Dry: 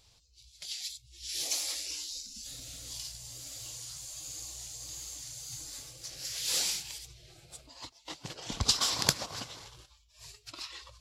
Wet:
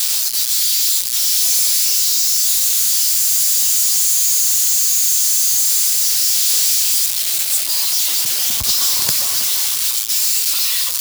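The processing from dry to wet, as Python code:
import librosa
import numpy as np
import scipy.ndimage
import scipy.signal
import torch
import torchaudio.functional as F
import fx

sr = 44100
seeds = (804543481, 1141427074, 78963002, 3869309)

y = x + 0.5 * 10.0 ** (-11.5 / 20.0) * np.diff(np.sign(x), prepend=np.sign(x[:1]))
y = F.gain(torch.from_numpy(y), 2.0).numpy()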